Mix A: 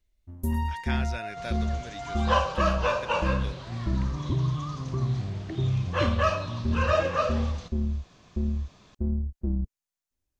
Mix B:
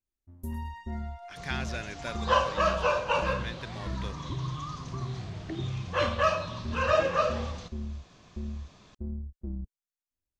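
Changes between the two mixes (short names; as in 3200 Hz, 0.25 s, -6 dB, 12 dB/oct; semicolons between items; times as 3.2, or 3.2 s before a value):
speech: entry +0.60 s; first sound -8.5 dB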